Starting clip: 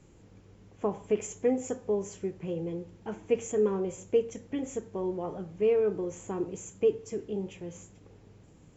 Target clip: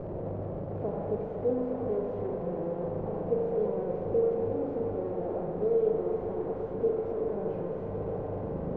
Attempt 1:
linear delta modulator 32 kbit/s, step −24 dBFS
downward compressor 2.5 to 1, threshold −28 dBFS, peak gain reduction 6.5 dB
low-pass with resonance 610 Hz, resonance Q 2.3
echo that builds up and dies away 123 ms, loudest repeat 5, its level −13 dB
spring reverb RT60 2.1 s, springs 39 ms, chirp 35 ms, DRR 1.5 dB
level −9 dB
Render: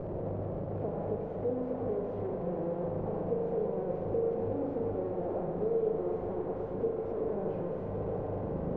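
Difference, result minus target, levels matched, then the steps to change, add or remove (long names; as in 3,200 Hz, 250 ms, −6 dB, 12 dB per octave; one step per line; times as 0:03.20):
downward compressor: peak gain reduction +6.5 dB
remove: downward compressor 2.5 to 1, threshold −28 dBFS, peak gain reduction 6.5 dB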